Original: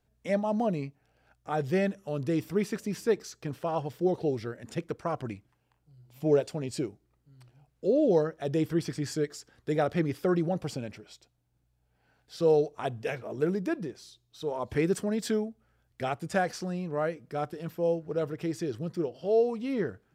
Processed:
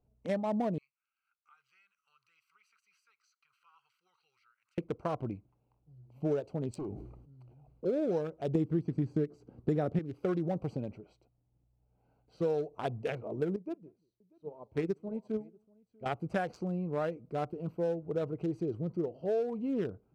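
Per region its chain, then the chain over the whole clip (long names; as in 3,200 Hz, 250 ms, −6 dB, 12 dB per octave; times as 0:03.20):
0:00.78–0:04.78: elliptic high-pass filter 1,300 Hz, stop band 50 dB + downward compressor 2 to 1, threshold −57 dBFS
0:06.76–0:07.85: gain into a clipping stage and back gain 35 dB + level that may fall only so fast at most 52 dB per second
0:08.55–0:09.99: de-essing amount 95% + parametric band 200 Hz +14 dB 3 octaves
0:13.56–0:16.06: multi-tap delay 41/183/641 ms −16.5/−18/−13 dB + expander for the loud parts 2.5 to 1, over −37 dBFS
whole clip: adaptive Wiener filter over 25 samples; downward compressor 6 to 1, threshold −28 dBFS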